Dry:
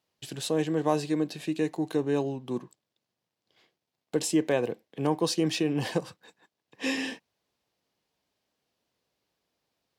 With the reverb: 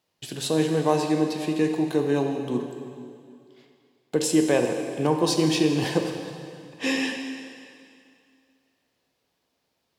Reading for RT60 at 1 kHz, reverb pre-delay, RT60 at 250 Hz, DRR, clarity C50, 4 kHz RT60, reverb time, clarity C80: 2.4 s, 6 ms, 2.4 s, 3.5 dB, 5.0 dB, 2.2 s, 2.4 s, 6.0 dB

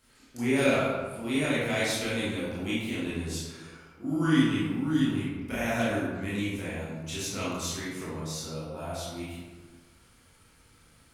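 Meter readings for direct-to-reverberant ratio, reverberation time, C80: −9.5 dB, 1.3 s, 1.5 dB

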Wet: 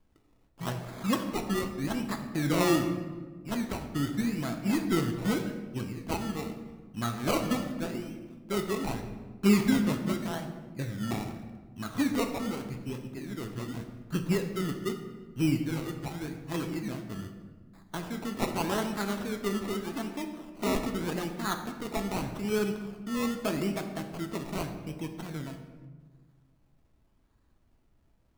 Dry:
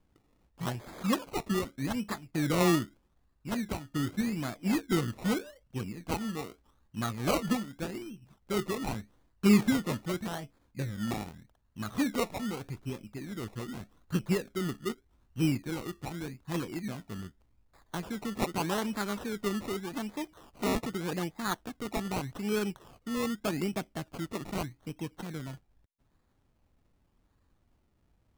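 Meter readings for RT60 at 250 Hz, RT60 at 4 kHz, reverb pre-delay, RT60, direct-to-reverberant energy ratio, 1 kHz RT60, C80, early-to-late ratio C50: 2.1 s, 0.85 s, 3 ms, 1.5 s, 4.5 dB, 1.3 s, 9.5 dB, 8.0 dB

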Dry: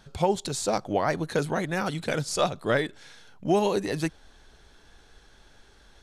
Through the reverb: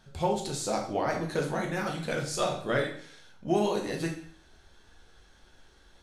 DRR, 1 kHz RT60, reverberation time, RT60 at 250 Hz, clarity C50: 0.0 dB, 0.55 s, 0.55 s, 0.55 s, 6.5 dB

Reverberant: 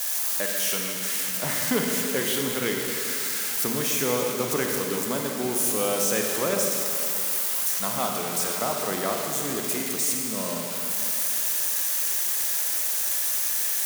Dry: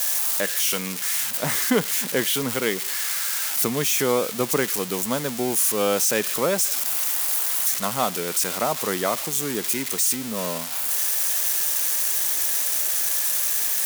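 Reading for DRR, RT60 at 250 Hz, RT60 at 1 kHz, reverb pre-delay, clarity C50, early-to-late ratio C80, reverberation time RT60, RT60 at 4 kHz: 0.5 dB, 2.9 s, 2.9 s, 26 ms, 1.5 dB, 2.5 dB, 2.9 s, 2.7 s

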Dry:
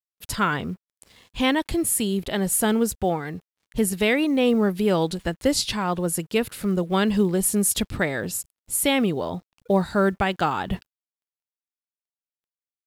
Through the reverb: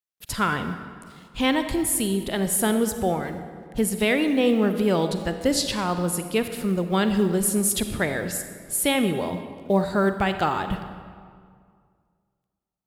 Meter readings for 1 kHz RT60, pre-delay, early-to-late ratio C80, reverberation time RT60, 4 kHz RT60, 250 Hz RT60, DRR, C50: 2.0 s, 39 ms, 9.5 dB, 2.1 s, 1.4 s, 2.2 s, 8.0 dB, 8.5 dB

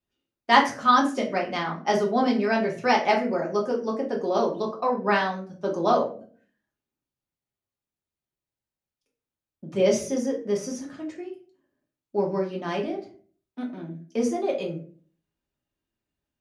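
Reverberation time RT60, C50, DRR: 0.45 s, 9.5 dB, −2.0 dB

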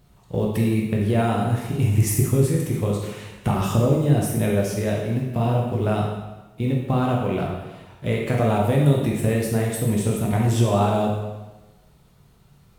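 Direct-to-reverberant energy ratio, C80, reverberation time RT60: −2.5 dB, 5.0 dB, 1.1 s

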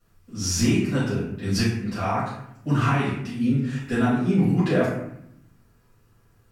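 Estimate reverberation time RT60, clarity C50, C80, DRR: 0.75 s, 1.5 dB, 5.0 dB, −12.5 dB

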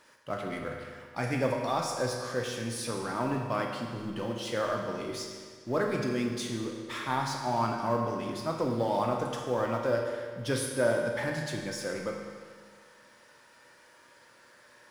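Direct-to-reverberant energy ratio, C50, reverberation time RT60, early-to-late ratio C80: 0.0 dB, 2.5 dB, 1.8 s, 4.0 dB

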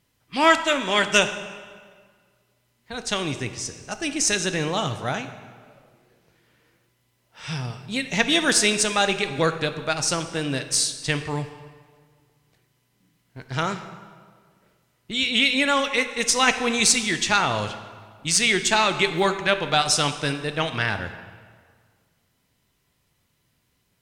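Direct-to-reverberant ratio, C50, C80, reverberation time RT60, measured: 8.5 dB, 10.5 dB, 12.0 dB, 1.8 s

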